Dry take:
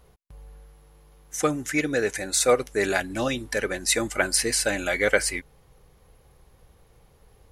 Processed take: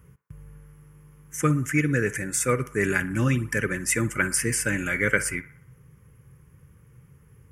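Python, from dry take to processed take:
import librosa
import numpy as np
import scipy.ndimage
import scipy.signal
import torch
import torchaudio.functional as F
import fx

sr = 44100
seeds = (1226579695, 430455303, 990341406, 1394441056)

p1 = scipy.signal.sosfilt(scipy.signal.butter(2, 67.0, 'highpass', fs=sr, output='sos'), x)
p2 = fx.peak_eq(p1, sr, hz=130.0, db=13.0, octaves=1.1)
p3 = fx.rider(p2, sr, range_db=10, speed_s=0.5)
p4 = p2 + (p3 * 10.0 ** (-1.0 / 20.0))
p5 = fx.fixed_phaser(p4, sr, hz=1700.0, stages=4)
p6 = fx.echo_banded(p5, sr, ms=60, feedback_pct=60, hz=1100.0, wet_db=-13.5)
y = p6 * 10.0 ** (-4.0 / 20.0)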